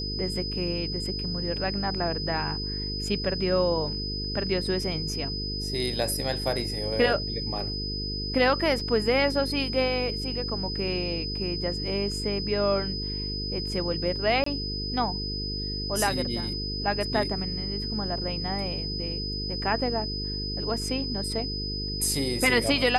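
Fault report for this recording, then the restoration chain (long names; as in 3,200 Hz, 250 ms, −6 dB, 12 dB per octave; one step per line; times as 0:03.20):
mains buzz 50 Hz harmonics 9 −34 dBFS
whistle 5,000 Hz −32 dBFS
0:08.80: drop-out 3 ms
0:14.44–0:14.46: drop-out 24 ms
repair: hum removal 50 Hz, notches 9
notch filter 5,000 Hz, Q 30
repair the gap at 0:08.80, 3 ms
repair the gap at 0:14.44, 24 ms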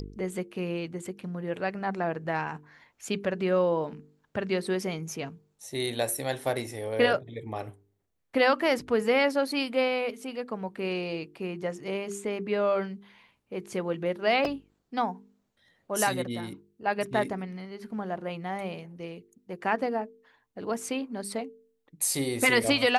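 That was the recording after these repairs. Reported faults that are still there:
none of them is left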